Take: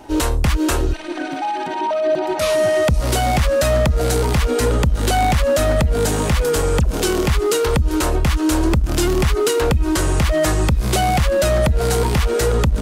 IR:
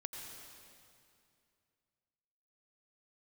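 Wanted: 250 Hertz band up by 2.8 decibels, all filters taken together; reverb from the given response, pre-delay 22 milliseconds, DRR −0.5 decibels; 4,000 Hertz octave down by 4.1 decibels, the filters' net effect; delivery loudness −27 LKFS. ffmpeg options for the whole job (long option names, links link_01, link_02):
-filter_complex "[0:a]equalizer=frequency=250:width_type=o:gain=4,equalizer=frequency=4000:width_type=o:gain=-5.5,asplit=2[link_01][link_02];[1:a]atrim=start_sample=2205,adelay=22[link_03];[link_02][link_03]afir=irnorm=-1:irlink=0,volume=2.5dB[link_04];[link_01][link_04]amix=inputs=2:normalize=0,volume=-13dB"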